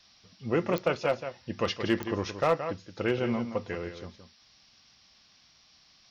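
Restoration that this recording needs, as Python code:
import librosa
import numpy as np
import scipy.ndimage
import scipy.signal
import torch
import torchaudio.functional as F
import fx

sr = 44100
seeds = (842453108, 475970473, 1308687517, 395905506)

y = fx.fix_declip(x, sr, threshold_db=-15.5)
y = fx.fix_declick_ar(y, sr, threshold=10.0)
y = fx.noise_reduce(y, sr, print_start_s=5.19, print_end_s=5.69, reduce_db=13.0)
y = fx.fix_echo_inverse(y, sr, delay_ms=172, level_db=-10.0)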